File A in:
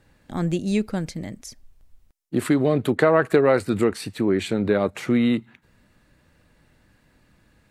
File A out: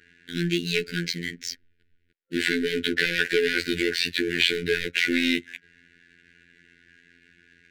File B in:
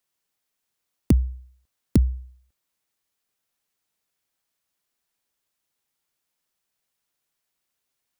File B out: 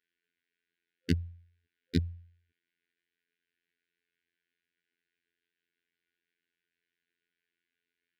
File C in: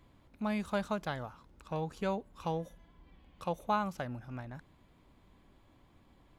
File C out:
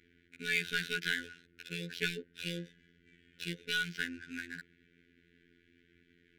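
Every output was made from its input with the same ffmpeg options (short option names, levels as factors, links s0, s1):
-filter_complex "[0:a]asplit=2[s0][s1];[s1]highpass=f=720:p=1,volume=17.8,asoftclip=type=tanh:threshold=0.631[s2];[s0][s2]amix=inputs=2:normalize=0,lowpass=f=2200:p=1,volume=0.501,acrossover=split=320|1100|4800[s3][s4][s5][s6];[s5]crystalizer=i=10:c=0[s7];[s3][s4][s7][s6]amix=inputs=4:normalize=0,adynamicsmooth=sensitivity=7:basefreq=1100,afftfilt=real='re*(1-between(b*sr/4096,490,1400))':imag='im*(1-between(b*sr/4096,490,1400))':win_size=4096:overlap=0.75,afftfilt=real='hypot(re,im)*cos(PI*b)':imag='0':win_size=2048:overlap=0.75,volume=0.398"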